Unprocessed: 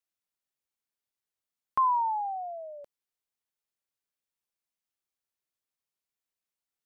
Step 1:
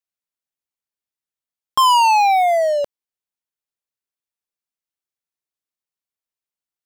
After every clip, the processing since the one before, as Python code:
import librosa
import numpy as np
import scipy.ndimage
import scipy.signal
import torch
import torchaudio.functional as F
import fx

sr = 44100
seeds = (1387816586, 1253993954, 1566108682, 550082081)

y = fx.leveller(x, sr, passes=5)
y = y * librosa.db_to_amplitude(7.5)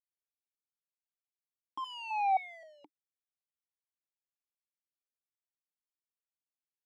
y = fx.vowel_held(x, sr, hz=3.8)
y = y * librosa.db_to_amplitude(-8.5)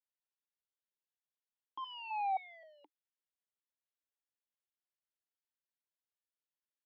y = fx.cabinet(x, sr, low_hz=500.0, low_slope=12, high_hz=3500.0, hz=(730.0, 1200.0, 2300.0), db=(-6, -7, -9))